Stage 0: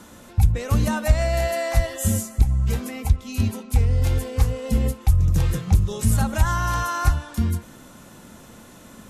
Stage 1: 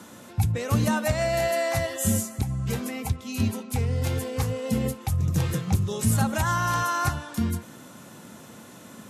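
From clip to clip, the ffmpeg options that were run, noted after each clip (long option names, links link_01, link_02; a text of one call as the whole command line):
ffmpeg -i in.wav -af "highpass=frequency=100:width=0.5412,highpass=frequency=100:width=1.3066" out.wav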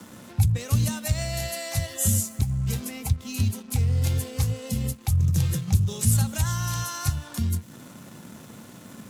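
ffmpeg -i in.wav -filter_complex "[0:a]acrossover=split=150|3000[link_01][link_02][link_03];[link_02]acompressor=threshold=-40dB:ratio=5[link_04];[link_01][link_04][link_03]amix=inputs=3:normalize=0,acrossover=split=250[link_05][link_06];[link_06]aeval=exprs='sgn(val(0))*max(abs(val(0))-0.00266,0)':channel_layout=same[link_07];[link_05][link_07]amix=inputs=2:normalize=0,volume=4.5dB" out.wav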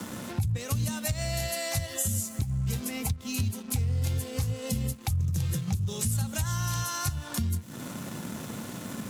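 ffmpeg -i in.wav -af "alimiter=limit=-15dB:level=0:latency=1:release=138,acompressor=threshold=-38dB:ratio=2.5,volume=7dB" out.wav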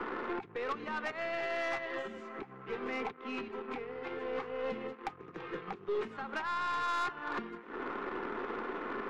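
ffmpeg -i in.wav -af "highpass=frequency=360:width=0.5412,highpass=frequency=360:width=1.3066,equalizer=frequency=400:width_type=q:width=4:gain=9,equalizer=frequency=600:width_type=q:width=4:gain=-10,equalizer=frequency=1200:width_type=q:width=4:gain=5,lowpass=frequency=2100:width=0.5412,lowpass=frequency=2100:width=1.3066,aeval=exprs='0.0596*(cos(1*acos(clip(val(0)/0.0596,-1,1)))-cos(1*PI/2))+0.00841*(cos(4*acos(clip(val(0)/0.0596,-1,1)))-cos(4*PI/2))':channel_layout=same,asoftclip=type=tanh:threshold=-34dB,volume=6dB" out.wav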